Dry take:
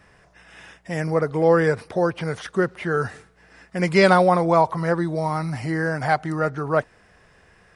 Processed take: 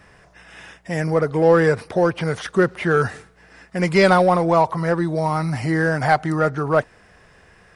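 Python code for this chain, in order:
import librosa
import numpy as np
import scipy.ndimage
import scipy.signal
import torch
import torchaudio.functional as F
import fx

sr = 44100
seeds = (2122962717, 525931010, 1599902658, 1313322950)

p1 = np.clip(x, -10.0 ** (-18.5 / 20.0), 10.0 ** (-18.5 / 20.0))
p2 = x + F.gain(torch.from_numpy(p1), -9.0).numpy()
y = fx.rider(p2, sr, range_db=10, speed_s=2.0)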